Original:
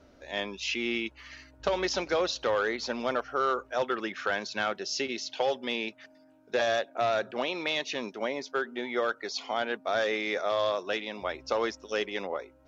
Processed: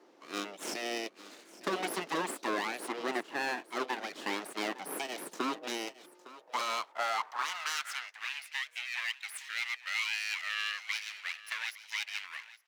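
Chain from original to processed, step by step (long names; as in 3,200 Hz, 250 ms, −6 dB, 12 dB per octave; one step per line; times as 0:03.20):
full-wave rectification
elliptic high-pass filter 160 Hz, stop band 40 dB
on a send: single-tap delay 859 ms −17 dB
on the sum: high-pass filter sweep 330 Hz → 2,200 Hz, 0:06.01–0:08.31
level −1.5 dB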